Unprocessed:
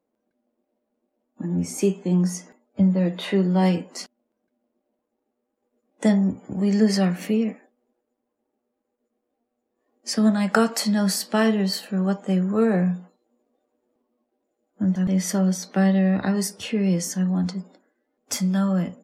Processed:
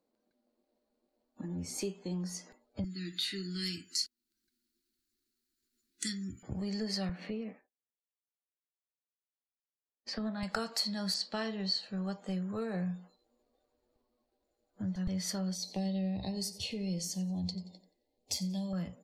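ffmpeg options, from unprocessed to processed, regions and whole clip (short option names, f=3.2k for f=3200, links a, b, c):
-filter_complex "[0:a]asettb=1/sr,asplit=3[a][b][c];[a]atrim=end=2.844[d];[b]atrim=start=2.84:end=6.43,asetpts=PTS-STARTPTS,afade=t=in:d=0.004:c=qsin,afade=t=out:st=3.586:d=0.004:c=qsin,asuperstop=centerf=700:order=12:qfactor=0.72,bass=f=250:g=-8,treble=f=4k:g=13[e];[c]atrim=start=6.426[f];[d][e]acrossfade=d=0.004:c1=hsin:c2=qsin[g];[g][f]acrossfade=d=0.004:c1=qsin:c2=hsin,asettb=1/sr,asplit=3[h][i][j];[h]atrim=end=7.094[k];[i]atrim=start=7.09:end=10.43,asetpts=PTS-STARTPTS,afade=t=in:d=0.004:c=qsin,afade=t=out:st=3.336:d=0.004:c=qsin,highpass=130,lowpass=2.5k,agate=range=-33dB:threshold=-47dB:ratio=3:release=100:detection=peak[l];[j]atrim=start=10.426[m];[k][l]acrossfade=d=0.004:c1=hsin:c2=qsin[n];[n][m]acrossfade=d=0.004:c1=qsin:c2=hsin,asettb=1/sr,asplit=3[o][p][q];[o]atrim=end=11.144[r];[p]atrim=start=11.14:end=11.98,asetpts=PTS-STARTPTS,afade=t=in:d=0.004:c=qsin,afade=t=out:st=0.836:d=0.004:c=qsin,lowpass=f=7.4k:w=0.5412,lowpass=f=7.4k:w=1.3066,agate=range=-33dB:threshold=-44dB:ratio=3:release=100:detection=peak[s];[q]atrim=start=11.976[t];[r][s]acrossfade=d=0.004:c1=hsin:c2=qsin[u];[u][t]acrossfade=d=0.004:c1=qsin:c2=hsin,asettb=1/sr,asplit=3[v][w][x];[v]atrim=end=15.554[y];[w]atrim=start=15.55:end=18.73,asetpts=PTS-STARTPTS,afade=t=in:d=0.004:c=qsin,afade=t=out:st=3.176:d=0.004:c=qsin,asuperstop=centerf=1400:order=4:qfactor=0.92,aecho=1:1:89|178|267:0.141|0.0466|0.0154,atrim=end_sample=140238[z];[x]atrim=start=18.726[aa];[y][z]acrossfade=d=0.004:c1=hsin:c2=qsin[ab];[ab][aa]acrossfade=d=0.004:c1=qsin:c2=hsin,equalizer=f=4.3k:t=o:w=0.42:g=13,acompressor=threshold=-36dB:ratio=2,asubboost=boost=12:cutoff=70,volume=-3.5dB"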